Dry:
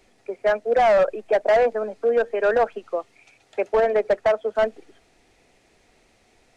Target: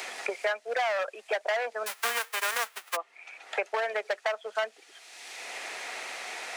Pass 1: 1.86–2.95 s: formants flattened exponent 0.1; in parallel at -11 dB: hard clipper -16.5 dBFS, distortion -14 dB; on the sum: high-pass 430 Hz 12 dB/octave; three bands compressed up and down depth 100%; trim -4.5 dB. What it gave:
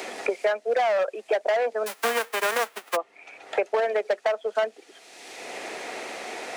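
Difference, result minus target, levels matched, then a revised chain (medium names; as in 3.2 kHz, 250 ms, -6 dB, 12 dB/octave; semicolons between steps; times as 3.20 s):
500 Hz band +3.0 dB
1.86–2.95 s: formants flattened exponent 0.1; in parallel at -11 dB: hard clipper -16.5 dBFS, distortion -14 dB; on the sum: high-pass 1 kHz 12 dB/octave; three bands compressed up and down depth 100%; trim -4.5 dB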